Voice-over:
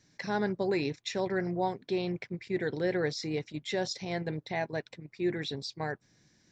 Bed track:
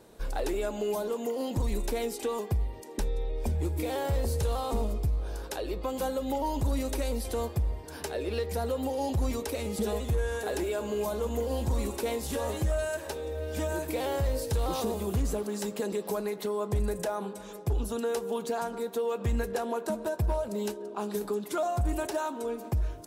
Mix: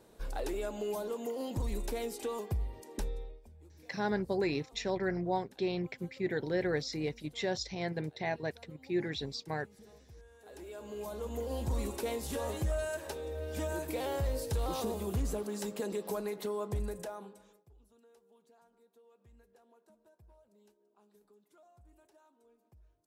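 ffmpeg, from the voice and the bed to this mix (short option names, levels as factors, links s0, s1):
-filter_complex "[0:a]adelay=3700,volume=0.794[s0];[1:a]volume=7.08,afade=t=out:st=3.04:d=0.37:silence=0.0841395,afade=t=in:st=10.38:d=1.38:silence=0.0749894,afade=t=out:st=16.51:d=1.15:silence=0.0354813[s1];[s0][s1]amix=inputs=2:normalize=0"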